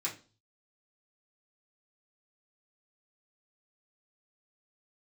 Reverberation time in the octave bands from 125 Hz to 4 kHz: 0.70, 0.45, 0.40, 0.35, 0.30, 0.35 s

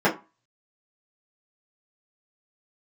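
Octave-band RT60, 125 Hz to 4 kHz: 0.30, 0.30, 0.25, 0.35, 0.25, 0.15 s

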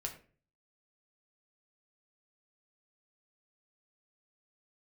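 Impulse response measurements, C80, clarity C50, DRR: 14.0 dB, 10.5 dB, 1.0 dB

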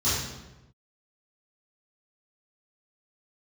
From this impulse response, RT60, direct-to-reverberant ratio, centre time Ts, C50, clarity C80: 1.0 s, -14.0 dB, 76 ms, -1.0 dB, 2.5 dB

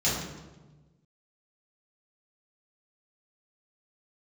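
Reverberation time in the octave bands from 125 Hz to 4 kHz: 1.7, 1.5, 1.3, 1.1, 0.90, 0.80 s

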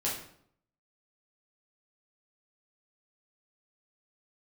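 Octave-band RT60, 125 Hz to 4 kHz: 0.75, 0.75, 0.65, 0.60, 0.55, 0.50 s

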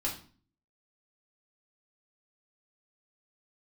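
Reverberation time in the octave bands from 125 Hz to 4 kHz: 0.65, 0.65, 0.45, 0.40, 0.40, 0.40 s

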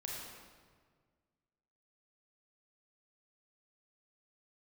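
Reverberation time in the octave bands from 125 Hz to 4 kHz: 2.2, 2.0, 1.8, 1.6, 1.4, 1.2 s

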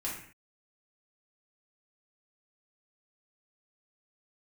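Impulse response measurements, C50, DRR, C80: 3.5 dB, -6.0 dB, 7.5 dB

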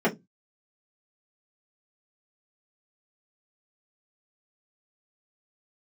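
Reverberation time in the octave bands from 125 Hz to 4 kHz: 0.35, 0.25, 0.20, 0.15, 0.10, 0.15 s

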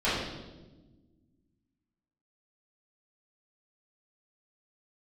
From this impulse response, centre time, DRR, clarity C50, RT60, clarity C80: 75 ms, -13.5 dB, 0.5 dB, 1.2 s, 3.0 dB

